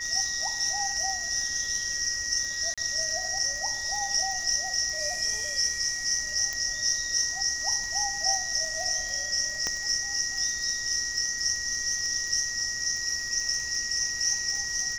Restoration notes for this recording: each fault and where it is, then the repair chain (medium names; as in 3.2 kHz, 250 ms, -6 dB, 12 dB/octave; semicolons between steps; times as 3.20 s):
crackle 30 per s -33 dBFS
whine 1.9 kHz -34 dBFS
2.74–2.78 s: dropout 36 ms
6.53 s: pop -16 dBFS
9.67 s: pop -15 dBFS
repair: de-click; band-stop 1.9 kHz, Q 30; interpolate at 2.74 s, 36 ms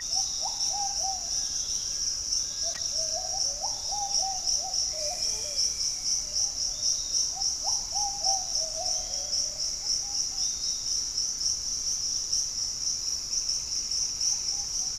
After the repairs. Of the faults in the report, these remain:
6.53 s: pop